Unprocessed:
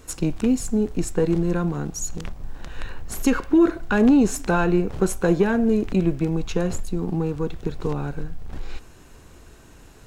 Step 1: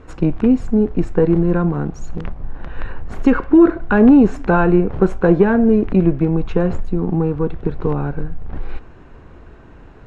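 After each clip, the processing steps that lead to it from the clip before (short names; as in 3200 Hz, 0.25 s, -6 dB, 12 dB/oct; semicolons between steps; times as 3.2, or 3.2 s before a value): LPF 1800 Hz 12 dB/oct; gain +6.5 dB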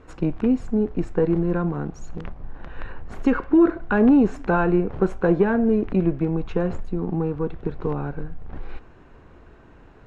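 low shelf 200 Hz -3.5 dB; gain -5 dB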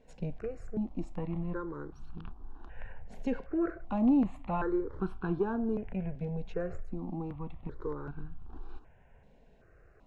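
step phaser 2.6 Hz 330–2000 Hz; gain -9 dB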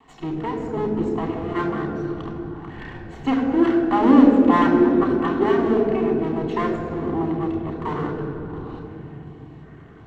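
minimum comb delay 2.7 ms; reverb RT60 3.5 s, pre-delay 3 ms, DRR 2.5 dB; gain +5 dB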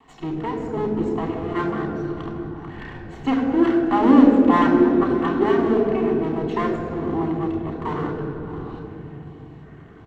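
echo 0.617 s -17.5 dB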